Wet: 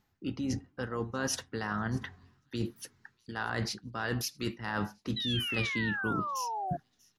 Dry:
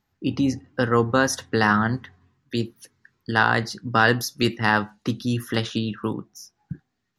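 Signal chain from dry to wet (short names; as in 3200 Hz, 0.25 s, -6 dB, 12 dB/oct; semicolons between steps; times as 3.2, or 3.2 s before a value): reverse; compressor 16:1, threshold -31 dBFS, peak gain reduction 20 dB; reverse; thin delay 0.638 s, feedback 36%, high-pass 4600 Hz, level -22.5 dB; painted sound fall, 5.16–6.77, 680–4000 Hz -36 dBFS; harmoniser -12 st -16 dB, -4 st -17 dB; gain +1 dB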